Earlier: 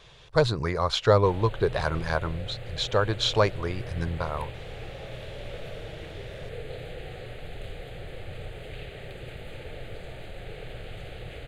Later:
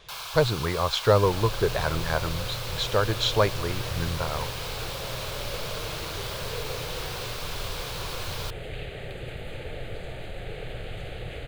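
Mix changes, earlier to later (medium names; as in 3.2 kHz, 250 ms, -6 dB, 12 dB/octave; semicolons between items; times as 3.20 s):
first sound: unmuted; second sound +3.5 dB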